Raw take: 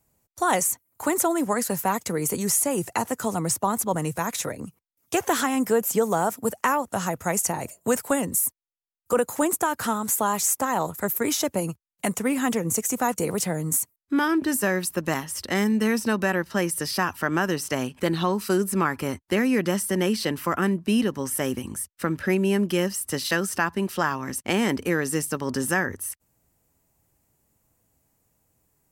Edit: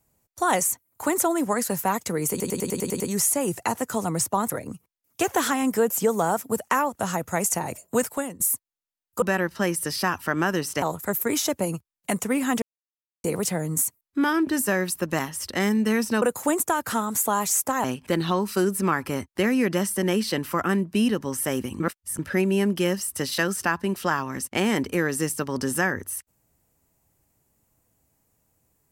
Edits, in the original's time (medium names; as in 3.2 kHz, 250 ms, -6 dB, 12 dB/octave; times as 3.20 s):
2.30 s: stutter 0.10 s, 8 plays
3.80–4.43 s: delete
7.92–8.33 s: fade out, to -16.5 dB
9.15–10.77 s: swap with 16.17–17.77 s
12.57–13.19 s: mute
21.73–22.12 s: reverse